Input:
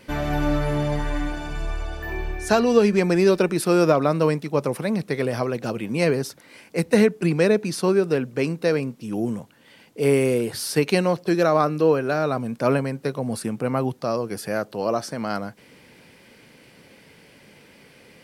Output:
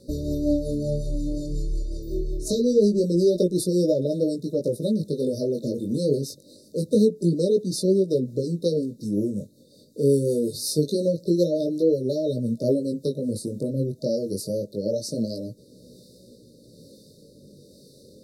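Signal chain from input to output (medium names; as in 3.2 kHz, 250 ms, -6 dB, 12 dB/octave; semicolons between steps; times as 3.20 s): FFT band-reject 630–3600 Hz; in parallel at +2 dB: compression, threshold -27 dBFS, peak gain reduction 14.5 dB; on the sum: rotary cabinet horn 5.5 Hz, later 1.1 Hz, at 12.93 s; chorus 0.25 Hz, delay 16 ms, depth 5.4 ms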